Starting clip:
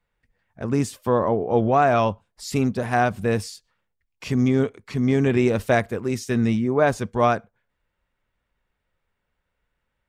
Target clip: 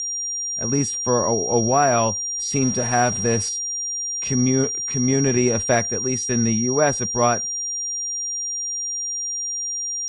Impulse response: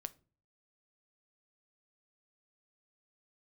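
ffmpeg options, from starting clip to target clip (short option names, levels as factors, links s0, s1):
-filter_complex "[0:a]asettb=1/sr,asplit=3[s0][s1][s2];[s0]atrim=end=2.624[s3];[s1]atrim=start=2.62:end=3.49,asetpts=PTS-STARTPTS,afade=t=in:d=0.004:c=qsin,afade=t=out:st=0.866:d=0.004:c=qsin,aeval=exprs='val(0)+0.5*0.0266*sgn(val(0))':c=same[s4];[s2]atrim=start=3.486[s5];[s3][s4]acrossfade=d=0.004:c1=hsin:c2=qsin[s6];[s6][s5]acrossfade=d=0.004:c1=qsin:c2=hsin,aeval=exprs='val(0)+0.0631*sin(2*PI*5700*n/s)':c=same" -ar 22050 -c:a libvorbis -b:a 48k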